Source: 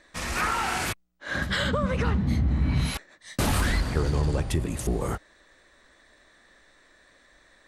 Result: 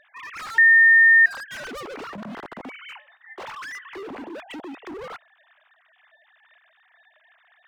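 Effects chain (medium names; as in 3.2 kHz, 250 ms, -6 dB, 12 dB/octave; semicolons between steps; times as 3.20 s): formants replaced by sine waves; 2.92–4.39 s: de-hum 214.4 Hz, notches 40; overload inside the chain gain 30.5 dB; 0.58–1.26 s: bleep 1.82 kHz -6.5 dBFS; trim -3.5 dB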